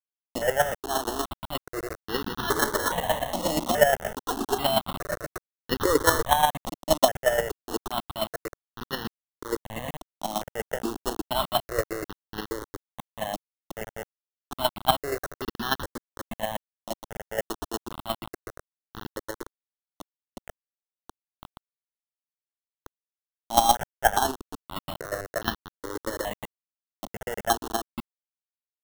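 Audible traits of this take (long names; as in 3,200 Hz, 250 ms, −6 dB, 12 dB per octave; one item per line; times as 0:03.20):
aliases and images of a low sample rate 2,400 Hz, jitter 0%
chopped level 8.4 Hz, depth 65%, duty 20%
a quantiser's noise floor 6 bits, dither none
notches that jump at a steady rate 2.4 Hz 440–2,200 Hz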